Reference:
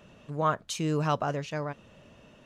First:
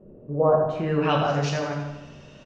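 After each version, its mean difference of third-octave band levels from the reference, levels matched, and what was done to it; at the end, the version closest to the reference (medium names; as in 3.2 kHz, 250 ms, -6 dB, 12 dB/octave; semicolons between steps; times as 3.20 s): 7.5 dB: in parallel at -2.5 dB: level held to a coarse grid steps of 22 dB; on the sum: low-pass sweep 410 Hz -> 5.7 kHz, 0.28–1.37 s; feedback delay 83 ms, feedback 54%, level -8.5 dB; simulated room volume 150 m³, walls mixed, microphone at 1 m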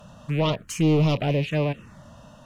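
4.5 dB: rattle on loud lows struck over -43 dBFS, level -34 dBFS; sine folder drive 9 dB, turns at -13.5 dBFS; harmonic-percussive split percussive -6 dB; touch-sensitive phaser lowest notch 350 Hz, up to 1.6 kHz, full sweep at -17 dBFS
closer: second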